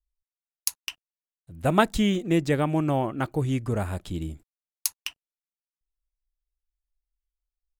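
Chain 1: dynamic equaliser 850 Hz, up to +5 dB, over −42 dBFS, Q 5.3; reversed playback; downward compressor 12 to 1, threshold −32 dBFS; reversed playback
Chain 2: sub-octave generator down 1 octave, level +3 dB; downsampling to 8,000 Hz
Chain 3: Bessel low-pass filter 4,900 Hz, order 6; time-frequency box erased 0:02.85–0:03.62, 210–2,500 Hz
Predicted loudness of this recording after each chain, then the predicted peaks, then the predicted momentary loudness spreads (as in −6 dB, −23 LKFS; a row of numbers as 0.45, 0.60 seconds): −38.0, −23.5, −27.0 LKFS; −14.5, −5.5, −7.0 dBFS; 6, 19, 17 LU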